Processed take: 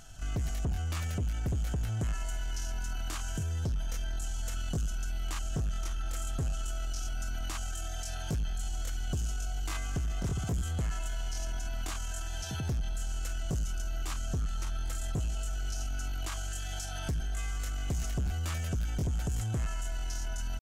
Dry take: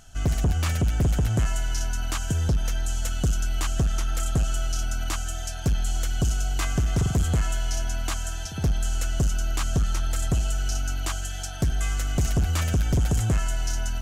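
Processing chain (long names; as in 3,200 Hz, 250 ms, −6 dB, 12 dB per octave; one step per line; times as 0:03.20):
brickwall limiter −27.5 dBFS, peak gain reduction 9.5 dB
tempo change 0.68×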